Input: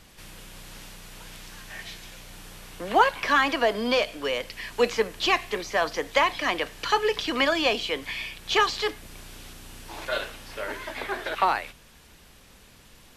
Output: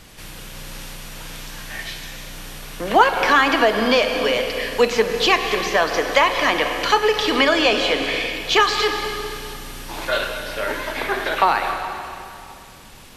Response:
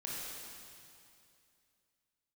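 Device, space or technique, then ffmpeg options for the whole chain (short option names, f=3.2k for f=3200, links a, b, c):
ducked reverb: -filter_complex "[0:a]asettb=1/sr,asplit=3[a][b][c];[a]atrim=end=7.364[d];[b]atrim=start=7.36:end=8.31,asetpts=PTS-STARTPTS,afade=t=in:d=0.004:c=qsin,afade=t=out:st=0.946:d=0.004:c=qsin,lowpass=11k[e];[c]atrim=start=8.306[f];[d][e]acrossfade=d=0.004:c1=hsin:c2=qsin[g];[g][f]acrossfade=d=0.004:c1=qsin:c2=hsin,asplit=3[h][i][j];[1:a]atrim=start_sample=2205[k];[i][k]afir=irnorm=-1:irlink=0[l];[j]apad=whole_len=580523[m];[l][m]sidechaincompress=threshold=-25dB:ratio=8:attack=40:release=242,volume=-1dB[n];[h][n]amix=inputs=2:normalize=0,volume=4dB"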